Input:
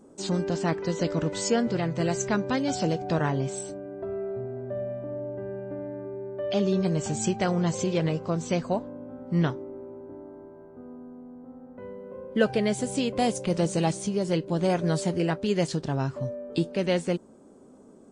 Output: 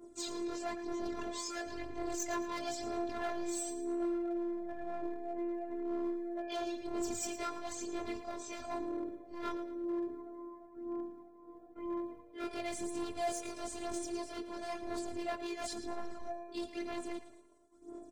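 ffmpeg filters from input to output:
-af "afftfilt=real='re':imag='-im':win_size=2048:overlap=0.75,aphaser=in_gain=1:out_gain=1:delay=2.1:decay=0.64:speed=1:type=sinusoidal,agate=range=-33dB:threshold=-49dB:ratio=3:detection=peak,areverse,acompressor=threshold=-34dB:ratio=4,areverse,volume=34dB,asoftclip=hard,volume=-34dB,bandreject=f=2.9k:w=11,afftfilt=real='hypot(re,im)*cos(PI*b)':imag='0':win_size=512:overlap=0.75,aecho=1:1:112|224|336|448:0.224|0.0851|0.0323|0.0123,volume=5dB"

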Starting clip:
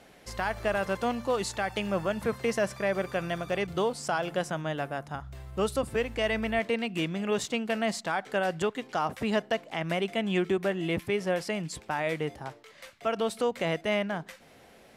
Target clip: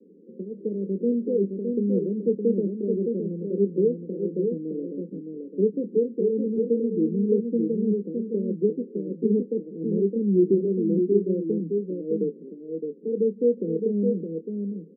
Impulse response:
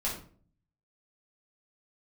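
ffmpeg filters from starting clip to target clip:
-filter_complex "[0:a]asuperpass=centerf=290:order=20:qfactor=0.92,asplit=2[a][b];[b]adelay=25,volume=-10.5dB[c];[a][c]amix=inputs=2:normalize=0,aecho=1:1:614:0.562,volume=7.5dB"

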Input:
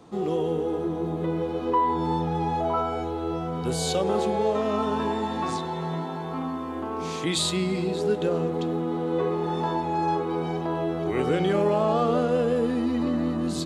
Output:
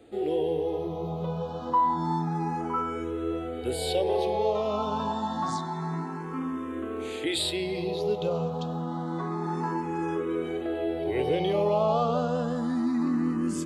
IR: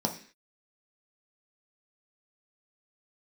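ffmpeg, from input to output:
-filter_complex "[0:a]asplit=2[a][b];[b]afreqshift=0.28[c];[a][c]amix=inputs=2:normalize=1"

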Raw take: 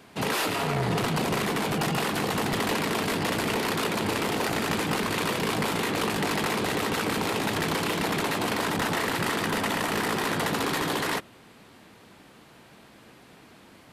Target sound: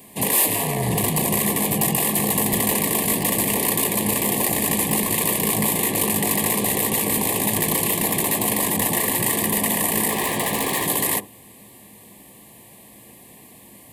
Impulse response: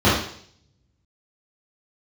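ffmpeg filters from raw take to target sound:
-filter_complex "[0:a]asettb=1/sr,asplit=3[a][b][c];[a]atrim=end=10.104[d];[b]atrim=start=10.1:end=10.86,asetpts=PTS-STARTPTS,afade=t=in:d=0.004:c=qsin,afade=t=out:st=0.756:d=0.004:c=qsin,asplit=2[e][f];[f]highpass=f=720:p=1,volume=14dB,asoftclip=type=tanh:threshold=-19.5dB[g];[e][g]amix=inputs=2:normalize=0,lowpass=f=3.3k:p=1,volume=-6dB[h];[c]atrim=start=10.856[i];[d][h]acrossfade=d=0.004:c1=hsin:c2=qsin[j];[j][i]acrossfade=d=0.004:c1=qsin:c2=hsin,aexciter=amount=5.8:drive=7.4:freq=7.8k,asuperstop=centerf=1400:order=12:qfactor=2.8,asplit=2[k][l];[1:a]atrim=start_sample=2205,atrim=end_sample=3528,lowpass=1.1k[m];[l][m]afir=irnorm=-1:irlink=0,volume=-33.5dB[n];[k][n]amix=inputs=2:normalize=0,asettb=1/sr,asplit=3[o][p][q];[o]atrim=end=7.944[r];[p]atrim=start=7.94:end=8.48,asetpts=PTS-STARTPTS,afade=t=in:d=0.004:c=qsin,afade=t=out:st=0.536:d=0.004:c=qsin,asoftclip=type=hard:threshold=-13.5dB[s];[q]atrim=start=8.476[t];[r][s]acrossfade=d=0.004:c1=hsin:c2=qsin[u];[u][t]acrossfade=d=0.004:c1=qsin:c2=hsin,volume=2dB"

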